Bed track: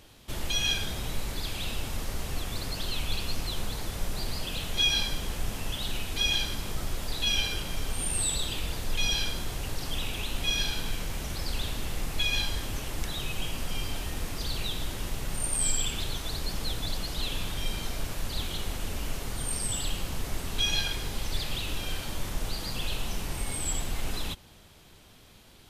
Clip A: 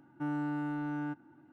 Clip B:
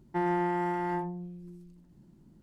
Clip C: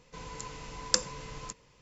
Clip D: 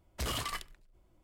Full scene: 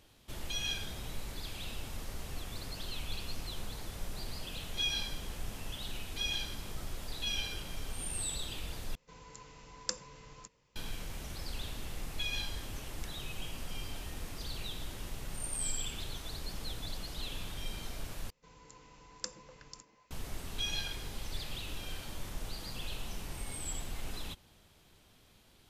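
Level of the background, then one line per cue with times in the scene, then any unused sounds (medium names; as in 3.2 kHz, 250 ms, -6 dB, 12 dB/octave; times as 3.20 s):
bed track -8.5 dB
8.95 s: replace with C -10 dB
18.30 s: replace with C -14.5 dB + repeats whose band climbs or falls 123 ms, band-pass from 280 Hz, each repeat 1.4 oct, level -1 dB
not used: A, B, D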